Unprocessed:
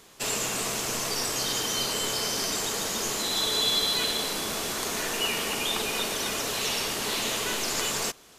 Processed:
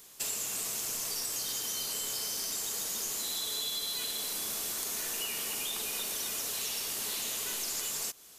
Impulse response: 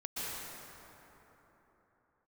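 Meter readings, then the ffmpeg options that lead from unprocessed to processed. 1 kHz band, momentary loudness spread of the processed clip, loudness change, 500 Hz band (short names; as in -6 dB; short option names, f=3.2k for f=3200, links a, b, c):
-13.5 dB, 1 LU, -6.0 dB, -14.5 dB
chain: -af "aemphasis=mode=production:type=75kf,acompressor=threshold=-23dB:ratio=6,volume=-9dB"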